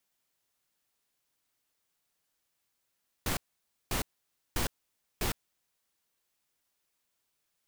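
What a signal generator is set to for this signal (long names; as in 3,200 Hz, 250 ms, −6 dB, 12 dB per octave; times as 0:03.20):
noise bursts pink, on 0.11 s, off 0.54 s, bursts 4, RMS −30.5 dBFS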